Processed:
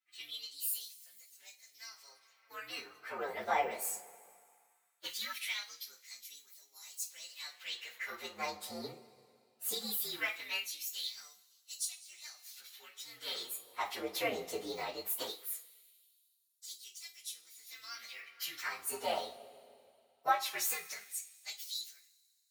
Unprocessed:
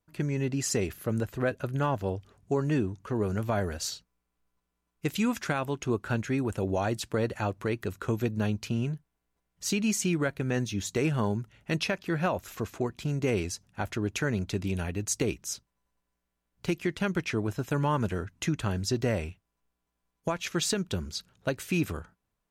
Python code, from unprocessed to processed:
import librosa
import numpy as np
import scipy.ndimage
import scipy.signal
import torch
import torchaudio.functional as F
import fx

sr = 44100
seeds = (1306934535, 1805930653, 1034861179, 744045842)

y = fx.partial_stretch(x, sr, pct=120)
y = fx.rev_double_slope(y, sr, seeds[0], early_s=0.26, late_s=2.4, knee_db=-21, drr_db=3.0)
y = fx.filter_lfo_highpass(y, sr, shape='sine', hz=0.19, low_hz=580.0, high_hz=6900.0, q=1.4)